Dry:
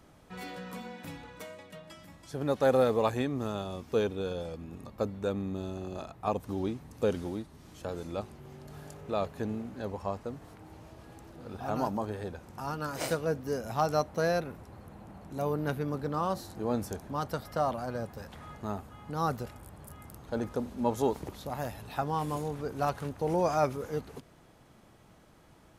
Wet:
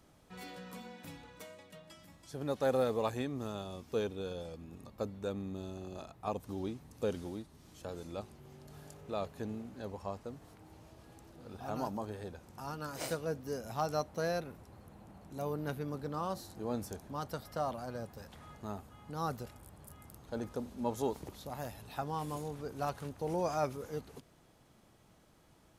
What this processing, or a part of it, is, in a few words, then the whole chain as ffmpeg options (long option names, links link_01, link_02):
exciter from parts: -filter_complex "[0:a]asplit=2[link_01][link_02];[link_02]highpass=2500,asoftclip=type=tanh:threshold=-40dB,volume=-5.5dB[link_03];[link_01][link_03]amix=inputs=2:normalize=0,volume=-6dB"